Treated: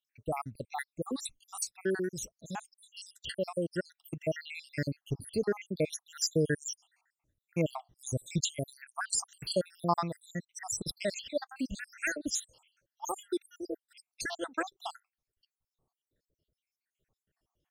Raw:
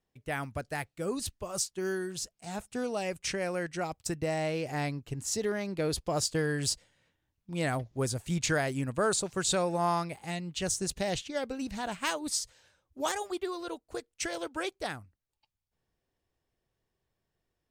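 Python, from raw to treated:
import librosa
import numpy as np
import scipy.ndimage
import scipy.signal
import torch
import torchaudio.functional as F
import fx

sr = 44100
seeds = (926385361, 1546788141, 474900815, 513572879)

y = fx.spec_dropout(x, sr, seeds[0], share_pct=79)
y = y * 10.0 ** (3.5 / 20.0)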